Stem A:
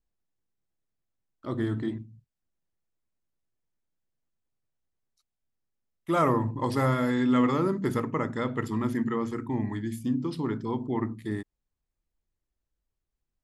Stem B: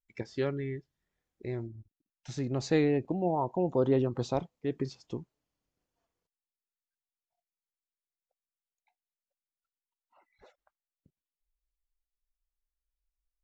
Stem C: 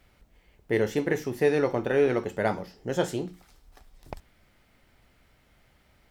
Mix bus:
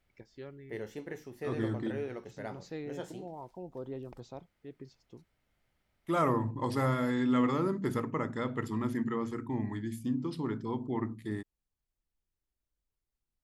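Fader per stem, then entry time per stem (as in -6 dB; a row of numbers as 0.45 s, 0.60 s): -4.5 dB, -15.0 dB, -15.5 dB; 0.00 s, 0.00 s, 0.00 s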